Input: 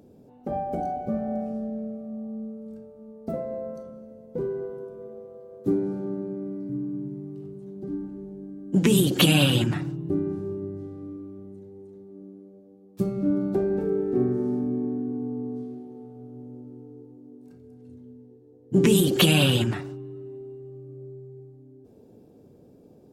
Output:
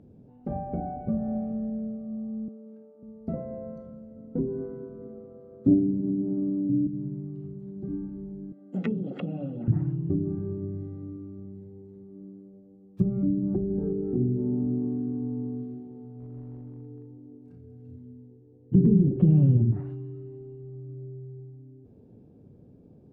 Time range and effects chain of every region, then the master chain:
2.48–3.03 HPF 260 Hz 24 dB/oct + air absorption 240 m
4.16–6.87 small resonant body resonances 270/1300 Hz, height 16 dB, ringing for 90 ms + Doppler distortion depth 0.28 ms
8.52–9.68 Chebyshev high-pass 270 Hz, order 3 + notches 50/100/150/200/250/300/350/400/450 Hz + comb 1.5 ms, depth 79%
16.19–17.97 hard clip -37 dBFS + doubler 34 ms -8 dB
whole clip: treble ducked by the level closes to 350 Hz, closed at -20.5 dBFS; tone controls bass +12 dB, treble -13 dB; gain -6.5 dB

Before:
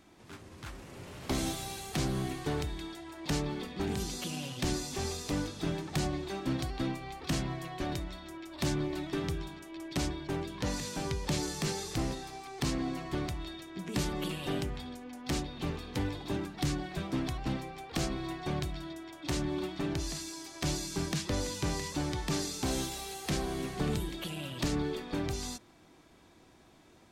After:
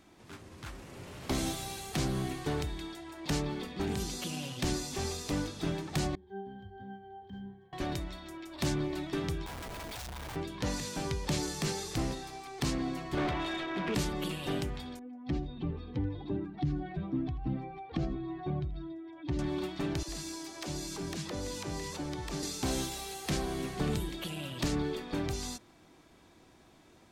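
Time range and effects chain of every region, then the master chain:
6.15–7.73 octave resonator G, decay 0.28 s + decimation joined by straight lines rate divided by 2×
9.46–10.36 Chebyshev band-stop 110–720 Hz, order 3 + Schmitt trigger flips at -51 dBFS
13.17–13.95 LPF 3900 Hz 24 dB/oct + overdrive pedal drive 26 dB, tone 1900 Hz, clips at -24 dBFS + doubler 14 ms -13.5 dB
14.99–19.39 spectral contrast raised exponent 1.7 + LPF 3800 Hz + echo 83 ms -17.5 dB
20.03–22.43 compressor 3:1, threshold -37 dBFS + bell 450 Hz +3.5 dB 2.4 oct + dispersion lows, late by 57 ms, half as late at 330 Hz
whole clip: dry

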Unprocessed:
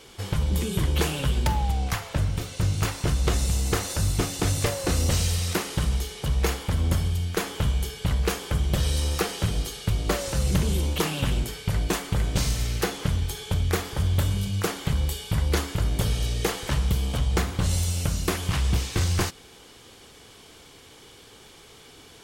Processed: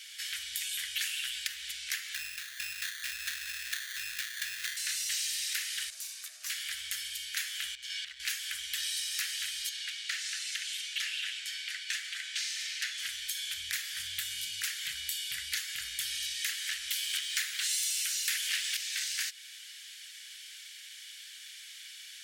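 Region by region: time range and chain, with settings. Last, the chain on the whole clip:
2.14–4.77 CVSD 32 kbps + comb 1.1 ms, depth 59% + sample-rate reducer 2600 Hz
5.9–6.5 band shelf 1800 Hz -9 dB 2.6 oct + compressor 2.5:1, threshold -25 dBFS + ring modulator 680 Hz
7.75–8.2 LPF 5700 Hz + compressor 12:1, threshold -33 dBFS + sample leveller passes 1
9.69–12.98 steep high-pass 1200 Hz 72 dB/oct + air absorption 57 m
13.57–16.34 HPF 44 Hz + resonant low shelf 390 Hz +8.5 dB, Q 1.5
16.91–18.77 HPF 650 Hz 6 dB/oct + sample leveller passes 2
whole clip: elliptic high-pass 1700 Hz, stop band 50 dB; compressor 2.5:1, threshold -38 dBFS; gain +4.5 dB

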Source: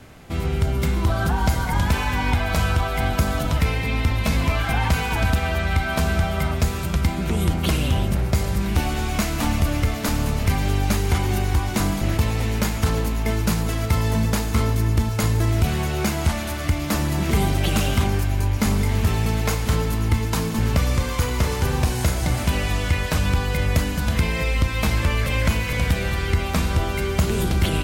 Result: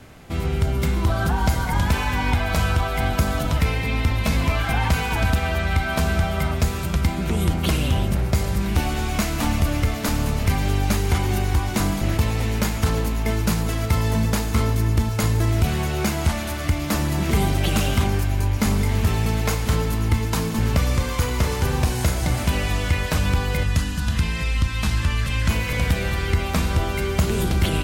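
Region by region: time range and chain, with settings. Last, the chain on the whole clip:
23.63–25.49 LPF 11000 Hz + bell 520 Hz -11 dB 1.4 oct + notch 2200 Hz, Q 8
whole clip: dry

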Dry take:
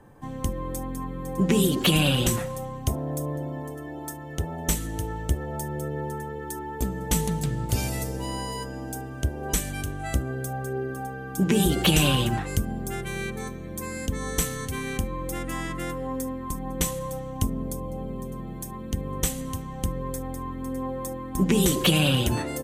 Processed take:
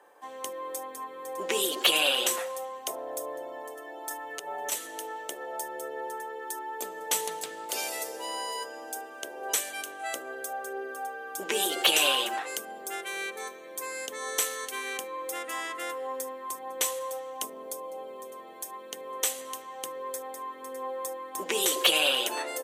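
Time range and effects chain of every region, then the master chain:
4.1–4.72 compressor 5:1, threshold -31 dBFS + comb 6.9 ms, depth 96%
whole clip: HPF 460 Hz 24 dB/oct; bell 3200 Hz +2 dB

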